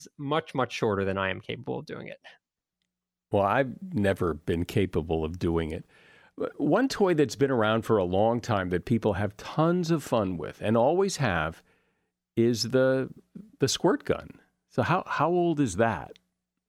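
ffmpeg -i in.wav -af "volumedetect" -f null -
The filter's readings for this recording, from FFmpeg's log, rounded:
mean_volume: -27.5 dB
max_volume: -11.5 dB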